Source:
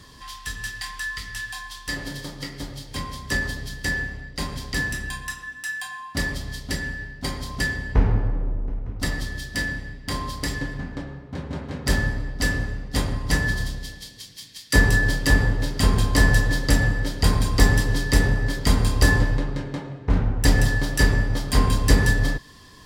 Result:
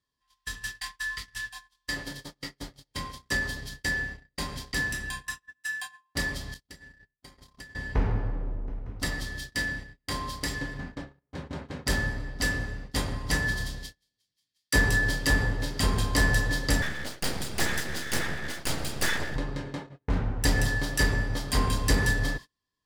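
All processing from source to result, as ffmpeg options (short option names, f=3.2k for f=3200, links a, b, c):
-filter_complex "[0:a]asettb=1/sr,asplit=3[a][b][c];[a]atrim=end=6.544[d];[b]atrim=start=6.54:end=7.75,asetpts=PTS-STARTPTS,afade=t=in:d=0.004:c=qsin,afade=t=out:st=1.206:d=0.004:c=qsin,agate=range=-33dB:threshold=-30dB:ratio=3:release=100:detection=peak,acompressor=threshold=-30dB:ratio=16:attack=3.2:release=140:knee=1:detection=peak[e];[c]atrim=start=7.746[f];[d][e]acrossfade=d=0.004:c1=hsin:c2=qsin[g];[g][f]acrossfade=d=0.004:c1=qsin:c2=hsin,asettb=1/sr,asplit=3[h][i][j];[h]atrim=end=16.824[k];[i]atrim=start=16.82:end=19.36,asetpts=PTS-STARTPTS,afade=t=in:d=0.004:c=qsin,afade=t=out:st=2.536:d=0.004:c=qsin,asuperstop=centerf=1000:order=20:qfactor=4.5,lowshelf=f=190:g=-7,aeval=exprs='abs(val(0))':c=same[l];[j]atrim=start=19.356[m];[k][l]acrossfade=d=0.004:c1=hsin:c2=qsin[n];[n][m]acrossfade=d=0.004:c1=qsin:c2=hsin,acontrast=29,agate=range=-34dB:threshold=-27dB:ratio=16:detection=peak,lowshelf=f=390:g=-4.5,volume=-7.5dB"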